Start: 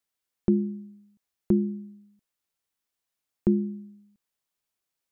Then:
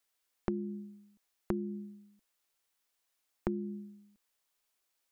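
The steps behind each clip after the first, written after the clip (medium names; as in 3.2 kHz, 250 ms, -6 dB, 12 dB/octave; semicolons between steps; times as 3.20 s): peaking EQ 130 Hz -12 dB 1.8 oct; compression 10:1, threshold -35 dBFS, peak gain reduction 12.5 dB; trim +4.5 dB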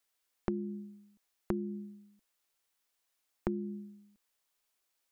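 no audible change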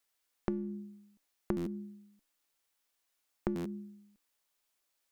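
feedback comb 290 Hz, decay 0.55 s, harmonics all, mix 60%; buffer glitch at 1.56/3.55 s, samples 512, times 8; trim +7.5 dB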